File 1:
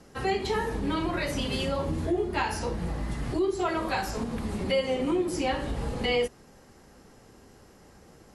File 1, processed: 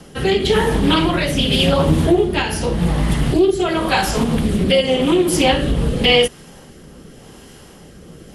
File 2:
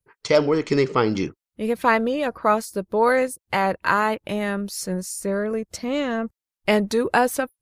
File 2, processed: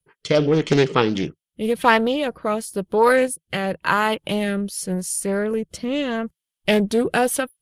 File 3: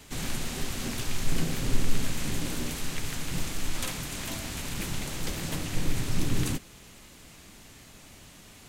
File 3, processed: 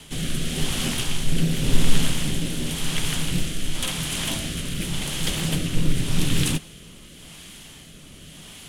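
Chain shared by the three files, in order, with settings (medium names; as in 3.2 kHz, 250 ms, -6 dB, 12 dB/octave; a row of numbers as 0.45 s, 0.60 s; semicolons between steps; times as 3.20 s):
graphic EQ with 31 bands 100 Hz -4 dB, 160 Hz +7 dB, 3.15 kHz +10 dB, 10 kHz +9 dB; rotary cabinet horn 0.9 Hz; loudspeaker Doppler distortion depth 0.3 ms; peak normalisation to -2 dBFS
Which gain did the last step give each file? +14.0 dB, +3.0 dB, +7.0 dB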